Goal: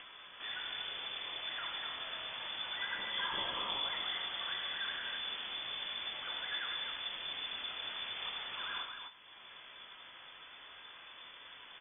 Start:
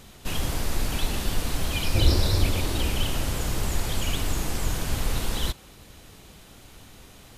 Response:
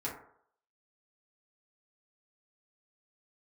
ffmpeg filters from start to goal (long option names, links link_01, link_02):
-filter_complex "[0:a]lowshelf=frequency=460:gain=-8.5,afftfilt=real='re*lt(hypot(re,im),0.447)':imag='im*lt(hypot(re,im),0.447)':win_size=1024:overlap=0.75,asplit=2[link_01][link_02];[link_02]aecho=0:1:54|73|155:0.447|0.178|0.501[link_03];[link_01][link_03]amix=inputs=2:normalize=0,acompressor=mode=upward:threshold=-32dB:ratio=2.5,flanger=delay=9.5:depth=6.1:regen=46:speed=0.5:shape=sinusoidal,asetrate=27562,aresample=44100,lowpass=frequency=3000:width_type=q:width=0.5098,lowpass=frequency=3000:width_type=q:width=0.6013,lowpass=frequency=3000:width_type=q:width=0.9,lowpass=frequency=3000:width_type=q:width=2.563,afreqshift=-3500,volume=-6dB"